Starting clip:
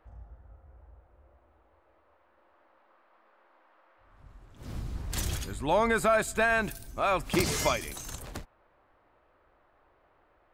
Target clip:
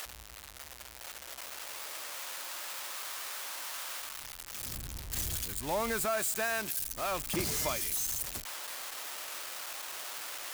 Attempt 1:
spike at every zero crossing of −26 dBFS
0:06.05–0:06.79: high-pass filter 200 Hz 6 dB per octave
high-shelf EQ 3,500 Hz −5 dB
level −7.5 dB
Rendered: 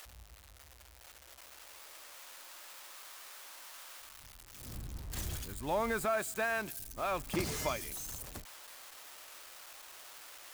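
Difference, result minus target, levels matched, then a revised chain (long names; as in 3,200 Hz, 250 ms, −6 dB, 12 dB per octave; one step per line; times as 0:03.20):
spike at every zero crossing: distortion −10 dB
spike at every zero crossing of −15.5 dBFS
0:06.05–0:06.79: high-pass filter 200 Hz 6 dB per octave
high-shelf EQ 3,500 Hz −5 dB
level −7.5 dB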